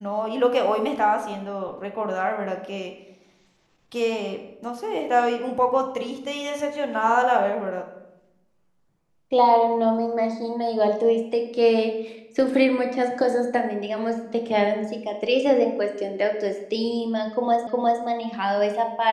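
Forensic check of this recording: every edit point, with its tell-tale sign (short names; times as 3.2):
17.67 repeat of the last 0.36 s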